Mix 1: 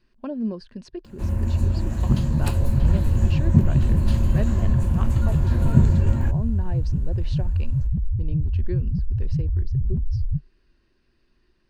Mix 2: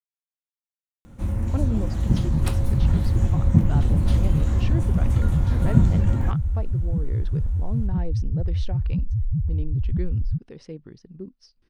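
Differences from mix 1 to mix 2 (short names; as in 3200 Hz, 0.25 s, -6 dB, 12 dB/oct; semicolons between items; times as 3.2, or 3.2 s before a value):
speech: entry +1.30 s; master: remove ripple EQ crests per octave 1.4, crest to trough 6 dB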